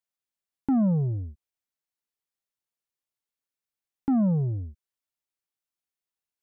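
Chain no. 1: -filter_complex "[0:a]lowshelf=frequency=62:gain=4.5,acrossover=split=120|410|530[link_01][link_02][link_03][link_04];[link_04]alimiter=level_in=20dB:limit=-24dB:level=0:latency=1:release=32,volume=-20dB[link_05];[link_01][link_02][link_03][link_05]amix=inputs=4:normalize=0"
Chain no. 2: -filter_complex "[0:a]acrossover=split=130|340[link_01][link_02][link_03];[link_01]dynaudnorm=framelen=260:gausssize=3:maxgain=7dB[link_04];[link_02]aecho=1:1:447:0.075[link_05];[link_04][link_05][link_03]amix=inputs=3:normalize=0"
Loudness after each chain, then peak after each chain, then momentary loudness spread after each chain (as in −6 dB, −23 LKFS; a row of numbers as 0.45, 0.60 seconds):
−25.5, −24.0 LKFS; −15.5, −14.0 dBFS; 15, 14 LU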